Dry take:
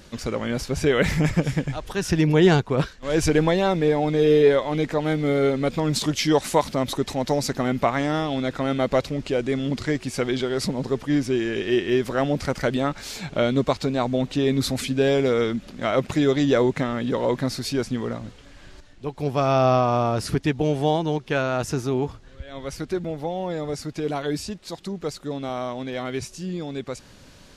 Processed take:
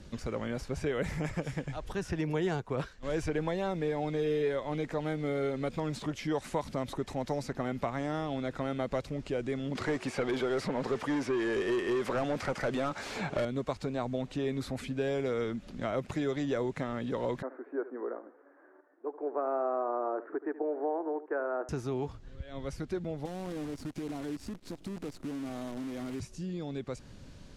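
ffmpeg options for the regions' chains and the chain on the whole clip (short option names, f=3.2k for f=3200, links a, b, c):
-filter_complex "[0:a]asettb=1/sr,asplit=3[a][b][c];[a]atrim=end=9.754[d];[b]atrim=start=9.75:end=13.45,asetpts=PTS-STARTPTS,afade=t=in:d=0.004:c=qsin,afade=t=out:st=3.696:d=0.004:c=qsin,highpass=49,asplit=2[e][f];[f]highpass=f=720:p=1,volume=22dB,asoftclip=type=tanh:threshold=-8.5dB[g];[e][g]amix=inputs=2:normalize=0,lowpass=f=4.3k:p=1,volume=-6dB[h];[c]atrim=start=13.446[i];[d][h]acrossfade=d=0.004:c1=hsin:c2=qsin[j];[j][i]acrossfade=d=0.004:c1=qsin:c2=hsin,asettb=1/sr,asplit=3[k][l][m];[k]atrim=end=17.424[n];[l]atrim=start=17.42:end=21.69,asetpts=PTS-STARTPTS,afade=t=in:d=0.004:c=qsin,afade=t=out:st=4.266:d=0.004:c=qsin,asuperpass=centerf=730:order=12:qfactor=0.53,aecho=1:1:74:0.158,atrim=end_sample=188307[o];[m]atrim=start=21.686[p];[n][o]acrossfade=d=0.004:c1=hsin:c2=qsin[q];[q][p]acrossfade=d=0.004:c1=qsin:c2=hsin,asettb=1/sr,asplit=3[r][s][t];[r]atrim=end=23.254[u];[s]atrim=start=23.25:end=26.2,asetpts=PTS-STARTPTS,afade=t=in:d=0.004:c=qsin,afade=t=out:st=2.946:d=0.004:c=qsin,equalizer=f=280:t=o:w=0.7:g=12,acompressor=threshold=-33dB:ratio=3:attack=3.2:release=140:knee=1:detection=peak,acrusher=bits=7:dc=4:mix=0:aa=0.000001[v];[t]atrim=start=26.196[w];[u][v]acrossfade=d=0.004:c1=hsin:c2=qsin[x];[x][w]acrossfade=d=0.004:c1=qsin:c2=hsin,lowpass=11k,lowshelf=f=370:g=10.5,acrossover=split=450|1200|2600|6400[y][z][aa][ab][ac];[y]acompressor=threshold=-28dB:ratio=4[ad];[z]acompressor=threshold=-24dB:ratio=4[ae];[aa]acompressor=threshold=-34dB:ratio=4[af];[ab]acompressor=threshold=-48dB:ratio=4[ag];[ac]acompressor=threshold=-45dB:ratio=4[ah];[ad][ae][af][ag][ah]amix=inputs=5:normalize=0,volume=-9dB"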